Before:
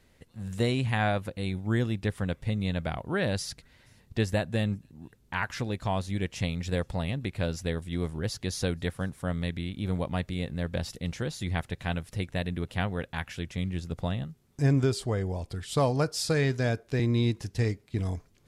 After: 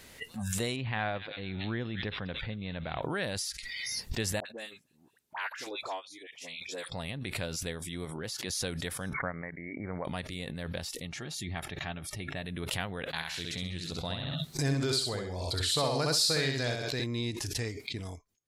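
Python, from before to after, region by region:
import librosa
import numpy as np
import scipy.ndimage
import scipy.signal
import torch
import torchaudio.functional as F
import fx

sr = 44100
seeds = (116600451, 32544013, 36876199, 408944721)

y = fx.chain(x, sr, fx.air_absorb(metres=210.0),
    fx.echo_wet_highpass(ms=225, feedback_pct=58, hz=3700.0, wet_db=-4.5), at=(0.76, 3.02))
y = fx.chain(y, sr, fx.highpass(hz=320.0, slope=6),
    fx.dispersion(late='highs', ms=59.0, hz=1100.0),
    fx.upward_expand(threshold_db=-42.0, expansion=2.5), at=(4.4, 6.92))
y = fx.chain(y, sr, fx.highpass(hz=140.0, slope=6),
    fx.high_shelf(hz=3400.0, db=-4.0), at=(8.05, 8.5))
y = fx.chain(y, sr, fx.brickwall_lowpass(high_hz=2300.0),
    fx.low_shelf(hz=460.0, db=-5.5),
    fx.transient(attack_db=8, sustain_db=-8), at=(9.13, 10.05))
y = fx.chain(y, sr, fx.high_shelf(hz=3500.0, db=-7.5),
    fx.notch_comb(f0_hz=500.0), at=(11.05, 12.45))
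y = fx.chain(y, sr, fx.peak_eq(hz=4100.0, db=12.5, octaves=0.31),
    fx.echo_feedback(ms=66, feedback_pct=33, wet_db=-4), at=(13.13, 17.04))
y = fx.noise_reduce_blind(y, sr, reduce_db=24)
y = fx.tilt_eq(y, sr, slope=2.0)
y = fx.pre_swell(y, sr, db_per_s=20.0)
y = y * 10.0 ** (-4.5 / 20.0)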